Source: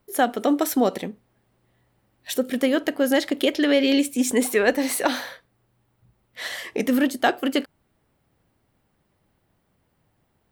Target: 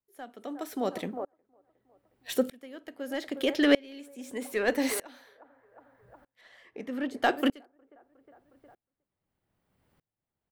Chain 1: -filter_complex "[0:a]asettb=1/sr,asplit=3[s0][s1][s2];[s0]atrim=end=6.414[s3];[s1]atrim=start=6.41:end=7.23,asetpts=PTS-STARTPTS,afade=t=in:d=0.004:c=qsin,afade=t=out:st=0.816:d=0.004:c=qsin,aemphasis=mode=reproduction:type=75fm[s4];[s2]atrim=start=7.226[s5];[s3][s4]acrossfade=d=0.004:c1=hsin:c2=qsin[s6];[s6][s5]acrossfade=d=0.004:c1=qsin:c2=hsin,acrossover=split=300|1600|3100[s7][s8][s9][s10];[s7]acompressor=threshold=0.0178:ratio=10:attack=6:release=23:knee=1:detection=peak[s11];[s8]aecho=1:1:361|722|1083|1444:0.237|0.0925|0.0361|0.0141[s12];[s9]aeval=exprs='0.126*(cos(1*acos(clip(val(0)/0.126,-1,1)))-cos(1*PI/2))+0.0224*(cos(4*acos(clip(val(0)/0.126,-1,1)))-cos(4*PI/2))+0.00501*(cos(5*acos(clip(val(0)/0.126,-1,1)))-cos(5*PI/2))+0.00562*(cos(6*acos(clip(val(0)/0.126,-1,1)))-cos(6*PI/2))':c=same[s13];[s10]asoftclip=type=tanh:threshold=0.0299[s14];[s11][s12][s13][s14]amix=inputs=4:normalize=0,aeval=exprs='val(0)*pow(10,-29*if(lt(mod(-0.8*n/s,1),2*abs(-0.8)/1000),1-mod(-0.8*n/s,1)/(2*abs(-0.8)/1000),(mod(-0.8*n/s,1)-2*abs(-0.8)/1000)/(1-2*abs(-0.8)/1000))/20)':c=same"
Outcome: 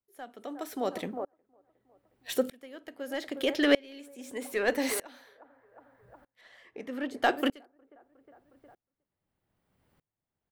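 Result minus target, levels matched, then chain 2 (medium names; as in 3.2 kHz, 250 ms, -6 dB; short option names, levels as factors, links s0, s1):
compression: peak gain reduction +7.5 dB
-filter_complex "[0:a]asettb=1/sr,asplit=3[s0][s1][s2];[s0]atrim=end=6.414[s3];[s1]atrim=start=6.41:end=7.23,asetpts=PTS-STARTPTS,afade=t=in:d=0.004:c=qsin,afade=t=out:st=0.816:d=0.004:c=qsin,aemphasis=mode=reproduction:type=75fm[s4];[s2]atrim=start=7.226[s5];[s3][s4]acrossfade=d=0.004:c1=hsin:c2=qsin[s6];[s6][s5]acrossfade=d=0.004:c1=qsin:c2=hsin,acrossover=split=300|1600|3100[s7][s8][s9][s10];[s7]acompressor=threshold=0.0473:ratio=10:attack=6:release=23:knee=1:detection=peak[s11];[s8]aecho=1:1:361|722|1083|1444:0.237|0.0925|0.0361|0.0141[s12];[s9]aeval=exprs='0.126*(cos(1*acos(clip(val(0)/0.126,-1,1)))-cos(1*PI/2))+0.0224*(cos(4*acos(clip(val(0)/0.126,-1,1)))-cos(4*PI/2))+0.00501*(cos(5*acos(clip(val(0)/0.126,-1,1)))-cos(5*PI/2))+0.00562*(cos(6*acos(clip(val(0)/0.126,-1,1)))-cos(6*PI/2))':c=same[s13];[s10]asoftclip=type=tanh:threshold=0.0299[s14];[s11][s12][s13][s14]amix=inputs=4:normalize=0,aeval=exprs='val(0)*pow(10,-29*if(lt(mod(-0.8*n/s,1),2*abs(-0.8)/1000),1-mod(-0.8*n/s,1)/(2*abs(-0.8)/1000),(mod(-0.8*n/s,1)-2*abs(-0.8)/1000)/(1-2*abs(-0.8)/1000))/20)':c=same"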